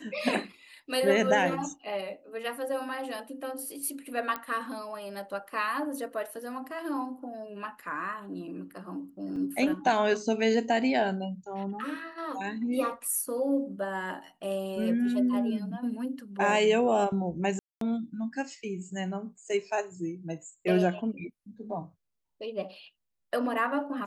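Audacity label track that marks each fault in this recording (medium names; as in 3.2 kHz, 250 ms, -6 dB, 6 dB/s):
4.360000	4.360000	pop -18 dBFS
9.360000	9.360000	dropout 3.7 ms
17.590000	17.810000	dropout 223 ms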